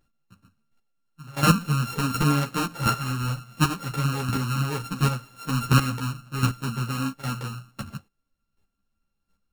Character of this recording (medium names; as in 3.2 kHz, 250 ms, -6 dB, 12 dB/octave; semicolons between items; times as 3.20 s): a buzz of ramps at a fixed pitch in blocks of 32 samples; chopped level 1.4 Hz, depth 65%, duty 10%; a shimmering, thickened sound